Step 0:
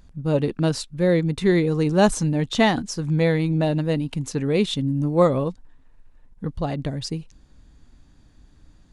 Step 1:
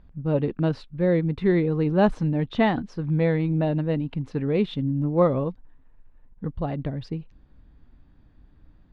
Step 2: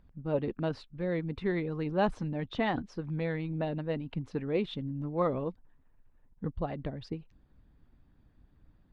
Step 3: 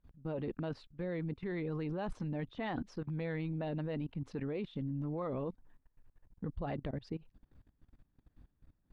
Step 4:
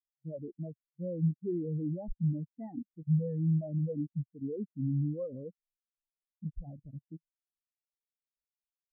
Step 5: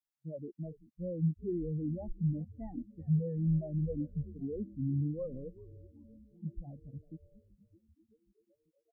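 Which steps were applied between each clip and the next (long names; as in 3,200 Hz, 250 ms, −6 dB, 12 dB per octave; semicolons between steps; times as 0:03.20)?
high-frequency loss of the air 370 metres; level −1.5 dB
harmonic and percussive parts rebalanced harmonic −8 dB; level −3.5 dB
output level in coarse steps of 20 dB; level +3 dB
every bin expanded away from the loudest bin 4 to 1; level +5 dB
echo with shifted repeats 384 ms, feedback 60%, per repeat −120 Hz, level −17 dB; level −1.5 dB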